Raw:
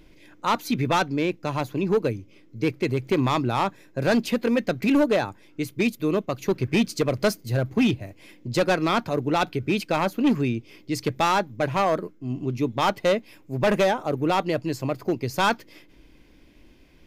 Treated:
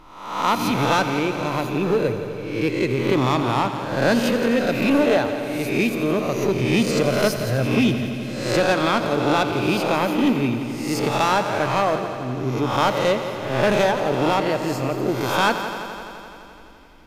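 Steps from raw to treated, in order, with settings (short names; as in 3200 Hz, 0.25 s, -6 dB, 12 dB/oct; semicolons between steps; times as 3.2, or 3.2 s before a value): spectral swells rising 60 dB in 0.81 s; multi-head echo 85 ms, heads first and second, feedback 74%, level -14 dB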